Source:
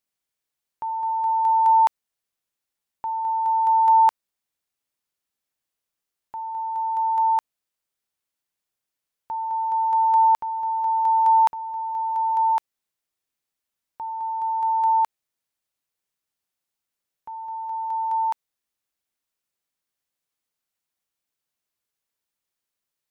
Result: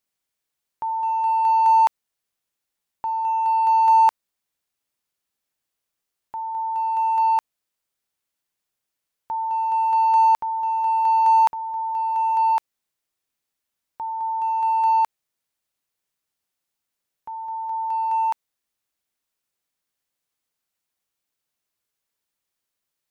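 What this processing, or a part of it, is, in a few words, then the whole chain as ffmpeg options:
parallel distortion: -filter_complex "[0:a]asplit=2[link_01][link_02];[link_02]asoftclip=type=hard:threshold=-24.5dB,volume=-10.5dB[link_03];[link_01][link_03]amix=inputs=2:normalize=0"

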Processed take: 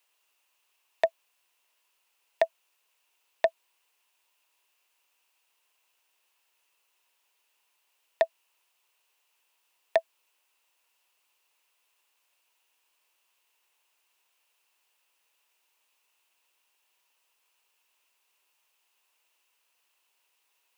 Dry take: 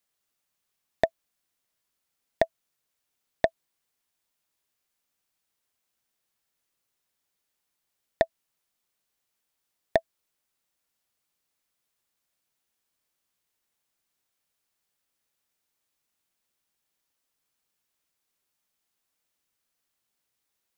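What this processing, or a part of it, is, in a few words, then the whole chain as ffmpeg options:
laptop speaker: -af "highpass=frequency=370:width=0.5412,highpass=frequency=370:width=1.3066,equalizer=frequency=970:width_type=o:width=0.34:gain=9,equalizer=frequency=2700:width_type=o:width=0.38:gain=11.5,alimiter=limit=-17dB:level=0:latency=1:release=15,volume=5.5dB"

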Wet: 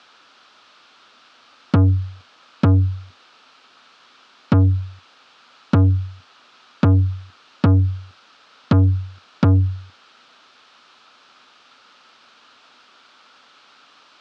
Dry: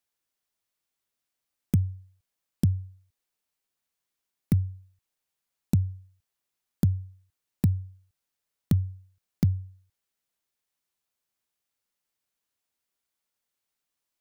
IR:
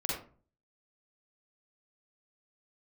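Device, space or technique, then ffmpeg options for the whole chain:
overdrive pedal into a guitar cabinet: -filter_complex "[0:a]asplit=2[link_01][link_02];[link_02]highpass=frequency=720:poles=1,volume=43dB,asoftclip=type=tanh:threshold=-11dB[link_03];[link_01][link_03]amix=inputs=2:normalize=0,lowpass=frequency=7800:poles=1,volume=-6dB,highpass=85,equalizer=frequency=92:width_type=q:width=4:gain=4,equalizer=frequency=250:width_type=q:width=4:gain=8,equalizer=frequency=1300:width_type=q:width=4:gain=9,equalizer=frequency=2000:width_type=q:width=4:gain=-7,lowpass=frequency=4400:width=0.5412,lowpass=frequency=4400:width=1.3066,volume=3.5dB"

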